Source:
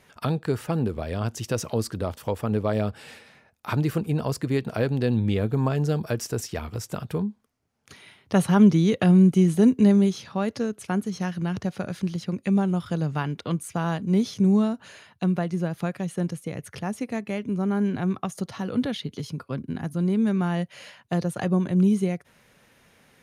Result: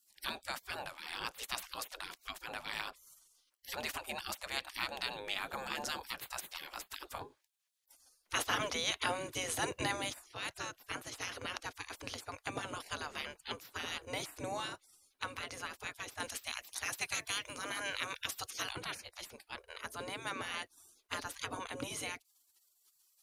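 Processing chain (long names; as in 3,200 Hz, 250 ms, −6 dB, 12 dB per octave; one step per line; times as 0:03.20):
gate on every frequency bin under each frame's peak −25 dB weak
0:16.20–0:18.73: high-shelf EQ 2,000 Hz +9.5 dB
level +4 dB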